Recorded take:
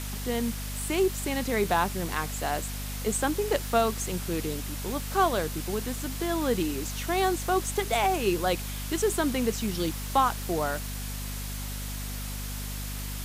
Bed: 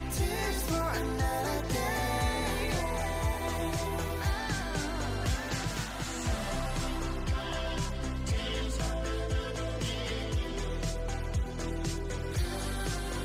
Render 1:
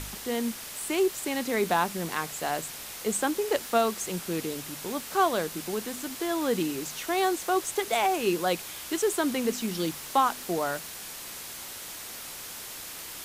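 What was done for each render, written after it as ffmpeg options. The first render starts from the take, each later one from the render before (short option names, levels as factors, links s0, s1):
-af "bandreject=f=50:t=h:w=4,bandreject=f=100:t=h:w=4,bandreject=f=150:t=h:w=4,bandreject=f=200:t=h:w=4,bandreject=f=250:t=h:w=4"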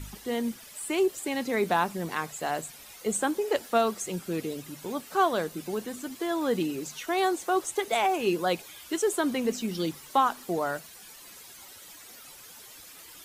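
-af "afftdn=nr=12:nf=-41"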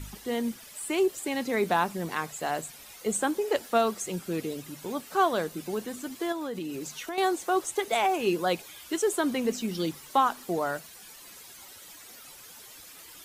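-filter_complex "[0:a]asettb=1/sr,asplit=3[s0][s1][s2];[s0]atrim=end=6.324[s3];[s1]atrim=start=6.32:end=7.18,asetpts=PTS-STARTPTS,afade=t=in:d=0.004:c=qsin,afade=t=out:st=0.856:d=0.004:c=qsin,acompressor=threshold=0.0282:ratio=6:attack=3.2:release=140:knee=1:detection=peak[s4];[s2]atrim=start=7.176[s5];[s3][s4]acrossfade=d=0.004:c1=hsin:c2=qsin[s6];[s6][s5]acrossfade=d=0.004:c1=qsin:c2=hsin"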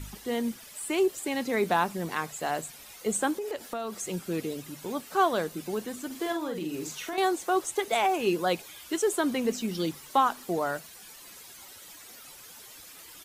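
-filter_complex "[0:a]asettb=1/sr,asplit=3[s0][s1][s2];[s0]atrim=end=3.334[s3];[s1]atrim=start=3.33:end=4.03,asetpts=PTS-STARTPTS,afade=t=in:d=0.004:c=qsin,afade=t=out:st=0.696:d=0.004:c=qsin,acompressor=threshold=0.0316:ratio=6:attack=3.2:release=140:knee=1:detection=peak[s4];[s2]atrim=start=4.026[s5];[s3][s4]acrossfade=d=0.004:c1=hsin:c2=qsin[s6];[s6][s5]acrossfade=d=0.004:c1=qsin:c2=hsin,asplit=3[s7][s8][s9];[s7]afade=t=out:st=6.1:d=0.02[s10];[s8]asplit=2[s11][s12];[s12]adelay=45,volume=0.562[s13];[s11][s13]amix=inputs=2:normalize=0,afade=t=in:st=6.1:d=0.02,afade=t=out:st=7.16:d=0.02[s14];[s9]afade=t=in:st=7.16:d=0.02[s15];[s10][s14][s15]amix=inputs=3:normalize=0"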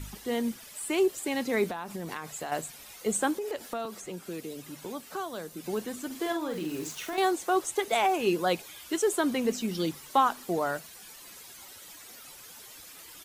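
-filter_complex "[0:a]asettb=1/sr,asplit=3[s0][s1][s2];[s0]atrim=end=1.674[s3];[s1]atrim=start=1.67:end=2.52,asetpts=PTS-STARTPTS,afade=t=in:d=0.004:c=qsin,afade=t=out:st=0.846:d=0.004:c=qsin,acompressor=threshold=0.0282:ratio=12:attack=3.2:release=140:knee=1:detection=peak[s4];[s2]atrim=start=2.516[s5];[s3][s4]acrossfade=d=0.004:c1=hsin:c2=qsin[s6];[s6][s5]acrossfade=d=0.004:c1=qsin:c2=hsin,asettb=1/sr,asplit=3[s7][s8][s9];[s7]atrim=end=3.854[s10];[s8]atrim=start=3.85:end=5.64,asetpts=PTS-STARTPTS,afade=t=in:d=0.004:c=qsin,afade=t=out:st=1.786:d=0.004:c=qsin,acrossover=split=230|2000|4600[s11][s12][s13][s14];[s11]acompressor=threshold=0.00316:ratio=3[s15];[s12]acompressor=threshold=0.0126:ratio=3[s16];[s13]acompressor=threshold=0.00178:ratio=3[s17];[s14]acompressor=threshold=0.00355:ratio=3[s18];[s15][s16][s17][s18]amix=inputs=4:normalize=0[s19];[s9]atrim=start=5.636[s20];[s10][s19]acrossfade=d=0.004:c1=hsin:c2=qsin[s21];[s21][s20]acrossfade=d=0.004:c1=qsin:c2=hsin,asettb=1/sr,asplit=3[s22][s23][s24];[s22]atrim=end=6.504[s25];[s23]atrim=start=6.5:end=7.31,asetpts=PTS-STARTPTS,afade=t=in:d=0.004:c=qsin,afade=t=out:st=0.806:d=0.004:c=qsin,aeval=exprs='val(0)*gte(abs(val(0)),0.00794)':c=same[s26];[s24]atrim=start=7.306[s27];[s25][s26]acrossfade=d=0.004:c1=hsin:c2=qsin[s28];[s28][s27]acrossfade=d=0.004:c1=qsin:c2=hsin"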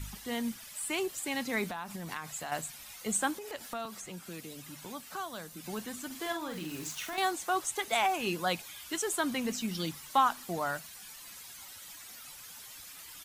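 -af "equalizer=f=410:t=o:w=1.2:g=-10.5"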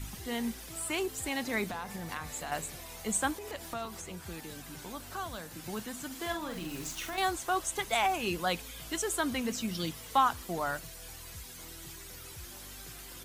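-filter_complex "[1:a]volume=0.133[s0];[0:a][s0]amix=inputs=2:normalize=0"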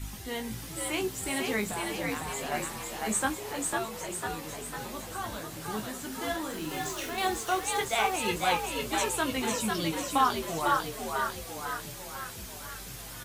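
-filter_complex "[0:a]asplit=2[s0][s1];[s1]adelay=19,volume=0.531[s2];[s0][s2]amix=inputs=2:normalize=0,asplit=9[s3][s4][s5][s6][s7][s8][s9][s10][s11];[s4]adelay=499,afreqshift=68,volume=0.708[s12];[s5]adelay=998,afreqshift=136,volume=0.398[s13];[s6]adelay=1497,afreqshift=204,volume=0.221[s14];[s7]adelay=1996,afreqshift=272,volume=0.124[s15];[s8]adelay=2495,afreqshift=340,volume=0.07[s16];[s9]adelay=2994,afreqshift=408,volume=0.0389[s17];[s10]adelay=3493,afreqshift=476,volume=0.0219[s18];[s11]adelay=3992,afreqshift=544,volume=0.0122[s19];[s3][s12][s13][s14][s15][s16][s17][s18][s19]amix=inputs=9:normalize=0"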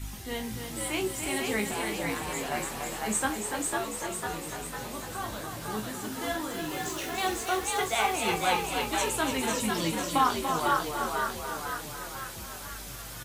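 -filter_complex "[0:a]asplit=2[s0][s1];[s1]adelay=42,volume=0.224[s2];[s0][s2]amix=inputs=2:normalize=0,aecho=1:1:290:0.447"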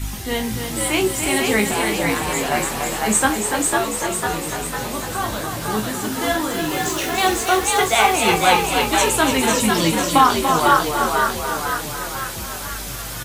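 -af "volume=3.76,alimiter=limit=0.794:level=0:latency=1"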